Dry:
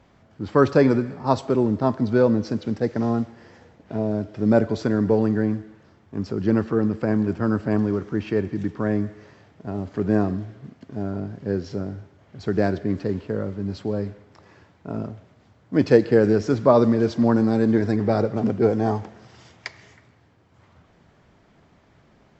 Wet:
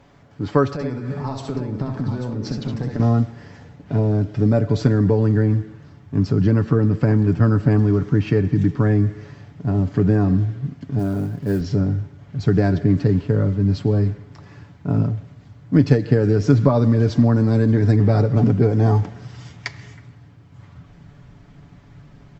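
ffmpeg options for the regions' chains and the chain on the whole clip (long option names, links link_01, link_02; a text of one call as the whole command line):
ffmpeg -i in.wav -filter_complex "[0:a]asettb=1/sr,asplit=3[link_01][link_02][link_03];[link_01]atrim=end=0.734[link_04];[link_02]atrim=start=0.73:end=3,asetpts=PTS-STARTPTS,afade=type=in:duration=0.004:curve=qsin,afade=type=out:start_time=2.266:duration=0.004:curve=qsin,acompressor=threshold=-28dB:ratio=20:attack=3.2:release=140:knee=1:detection=peak,aecho=1:1:64|78|839:0.531|0.355|0.355,atrim=end_sample=100107[link_05];[link_03]atrim=start=2.996[link_06];[link_04][link_05]acrossfade=duration=0.004:curve1=hsin:curve2=qsin[link_07];[link_07][link_06]acrossfade=duration=0.004:curve1=qsin:curve2=hsin,asettb=1/sr,asplit=3[link_08][link_09][link_10];[link_08]atrim=end=10.994[link_11];[link_09]atrim=start=10.99:end=11.61,asetpts=PTS-STARTPTS,afade=type=in:duration=0.004:curve=qsin,afade=type=out:start_time=0.616:duration=0.004:curve=qsin,lowshelf=frequency=110:gain=-12,acrusher=bits=7:mode=log:mix=0:aa=0.000001[link_12];[link_10]atrim=start=11.606[link_13];[link_11][link_12]acrossfade=duration=0.004:curve1=hsin:curve2=qsin[link_14];[link_14][link_13]acrossfade=duration=0.004:curve1=qsin:curve2=hsin,acompressor=threshold=-19dB:ratio=6,aecho=1:1:7:0.49,asubboost=boost=3.5:cutoff=220,volume=4dB" out.wav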